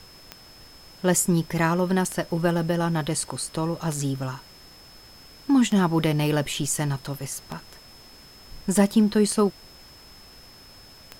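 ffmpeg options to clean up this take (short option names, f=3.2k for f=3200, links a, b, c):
-af "adeclick=t=4,bandreject=f=5.2k:w=30,afftdn=nr=20:nf=-48"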